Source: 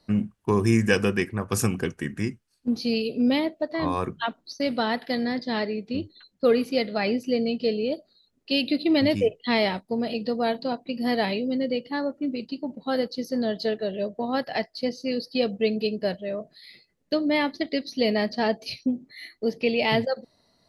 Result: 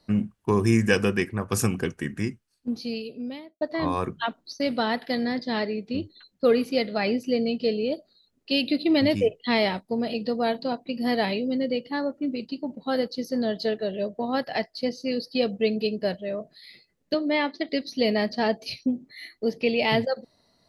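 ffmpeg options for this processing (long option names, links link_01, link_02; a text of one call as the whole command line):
ffmpeg -i in.wav -filter_complex "[0:a]asettb=1/sr,asplit=3[link_01][link_02][link_03];[link_01]atrim=end=17.144[link_04];[link_02]atrim=start=17.14:end=17.69,asetpts=PTS-STARTPTS,afade=type=in:duration=0.004:curve=qsin,afade=type=out:start_time=0.546:duration=0.004:curve=qsin,highpass=270,lowpass=5000[link_05];[link_03]atrim=start=17.686[link_06];[link_04][link_05]acrossfade=duration=0.004:curve1=hsin:curve2=qsin[link_07];[link_07][link_06]acrossfade=duration=0.004:curve1=qsin:curve2=hsin,asplit=2[link_08][link_09];[link_08]atrim=end=3.61,asetpts=PTS-STARTPTS,afade=type=out:start_time=2.19:duration=1.42[link_10];[link_09]atrim=start=3.61,asetpts=PTS-STARTPTS,afade=type=in:duration=0.004:curve=hsin[link_11];[link_10][link_11]concat=n=2:v=0:a=1" out.wav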